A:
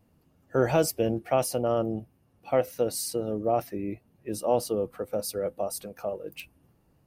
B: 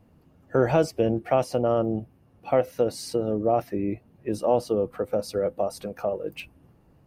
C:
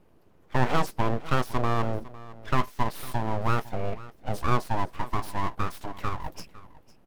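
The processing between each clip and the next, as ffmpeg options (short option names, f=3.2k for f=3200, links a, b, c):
-filter_complex "[0:a]acrossover=split=7600[a][b];[b]acompressor=threshold=-44dB:ratio=4:attack=1:release=60[c];[a][c]amix=inputs=2:normalize=0,highshelf=f=3.8k:g=-10,asplit=2[d][e];[e]acompressor=threshold=-31dB:ratio=6,volume=2dB[f];[d][f]amix=inputs=2:normalize=0"
-filter_complex "[0:a]asplit=2[a][b];[b]adelay=16,volume=-13.5dB[c];[a][c]amix=inputs=2:normalize=0,aeval=exprs='abs(val(0))':c=same,aecho=1:1:505:0.119"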